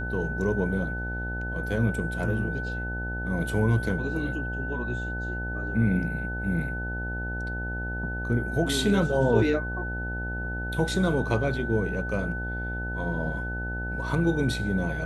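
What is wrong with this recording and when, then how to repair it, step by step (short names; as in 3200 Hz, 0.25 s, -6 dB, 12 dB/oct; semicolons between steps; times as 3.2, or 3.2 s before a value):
buzz 60 Hz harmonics 15 -33 dBFS
tone 1500 Hz -33 dBFS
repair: notch 1500 Hz, Q 30; de-hum 60 Hz, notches 15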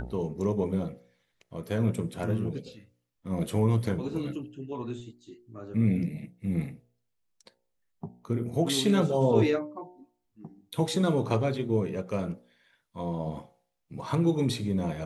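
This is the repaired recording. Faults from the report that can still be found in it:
none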